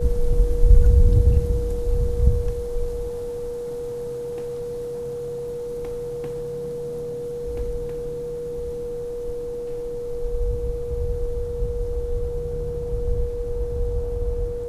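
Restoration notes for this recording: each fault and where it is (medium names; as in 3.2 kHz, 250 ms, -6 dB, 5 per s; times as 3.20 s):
whine 480 Hz -27 dBFS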